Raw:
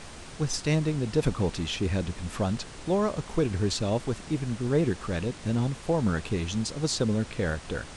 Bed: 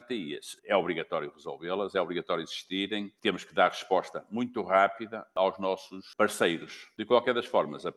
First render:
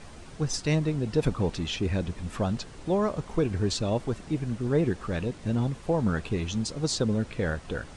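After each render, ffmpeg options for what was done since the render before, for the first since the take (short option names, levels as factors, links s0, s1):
-af "afftdn=nr=7:nf=-44"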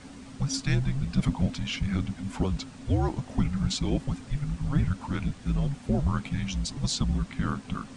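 -af "afreqshift=-280"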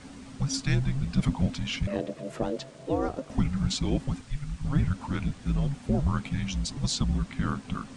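-filter_complex "[0:a]asettb=1/sr,asplit=3[s0][s1][s2];[s0]atrim=end=1.874[s3];[s1]atrim=start=1.87:end=3.3,asetpts=PTS-STARTPTS,afade=t=in:d=0.004:c=qsin,afade=t=out:st=1.426:d=0.004:c=qsin,aeval=exprs='val(0)*sin(2*PI*400*n/s)':c=same[s4];[s2]atrim=start=3.296[s5];[s3][s4]acrossfade=d=0.004:c1=hsin:c2=qsin[s6];[s6][s5]acrossfade=d=0.004:c1=qsin:c2=hsin,asettb=1/sr,asplit=3[s7][s8][s9];[s7]atrim=end=4.214[s10];[s8]atrim=start=4.21:end=4.65,asetpts=PTS-STARTPTS,afade=t=in:d=0.004:c=qsin,afade=t=out:st=0.436:d=0.004:c=qsin,equalizer=f=340:w=0.39:g=-9[s11];[s9]atrim=start=4.646[s12];[s10][s11]acrossfade=d=0.004:c1=hsin:c2=qsin[s13];[s13][s12]acrossfade=d=0.004:c1=qsin:c2=hsin"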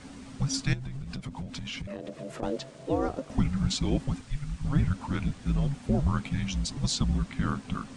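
-filter_complex "[0:a]asettb=1/sr,asplit=3[s0][s1][s2];[s0]atrim=end=0.734[s3];[s1]atrim=start=0.73:end=2.43,asetpts=PTS-STARTPTS,afade=t=in:d=0.004:c=qsin,afade=t=out:st=1.696:d=0.004:c=qsin,acompressor=threshold=0.0251:ratio=16:attack=3.2:release=140:knee=1:detection=peak[s4];[s2]atrim=start=2.426[s5];[s3][s4]acrossfade=d=0.004:c1=hsin:c2=qsin[s6];[s6][s5]acrossfade=d=0.004:c1=qsin:c2=hsin"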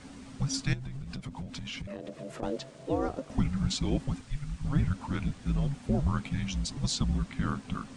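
-af "volume=0.794"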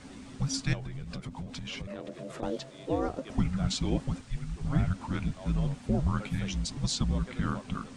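-filter_complex "[1:a]volume=0.0891[s0];[0:a][s0]amix=inputs=2:normalize=0"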